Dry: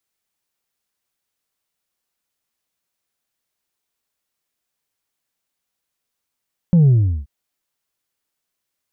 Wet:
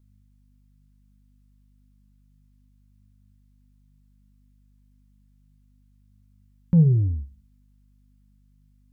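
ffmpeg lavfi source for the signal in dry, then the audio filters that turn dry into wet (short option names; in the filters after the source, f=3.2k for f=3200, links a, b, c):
-f lavfi -i "aevalsrc='0.355*clip((0.53-t)/0.38,0,1)*tanh(1.26*sin(2*PI*180*0.53/log(65/180)*(exp(log(65/180)*t/0.53)-1)))/tanh(1.26)':d=0.53:s=44100"
-af "aeval=exprs='val(0)+0.00224*(sin(2*PI*50*n/s)+sin(2*PI*2*50*n/s)/2+sin(2*PI*3*50*n/s)/3+sin(2*PI*4*50*n/s)/4+sin(2*PI*5*50*n/s)/5)':c=same,flanger=delay=9.4:depth=7.9:regen=80:speed=0.32:shape=triangular,asuperstop=centerf=660:order=4:qfactor=2.6"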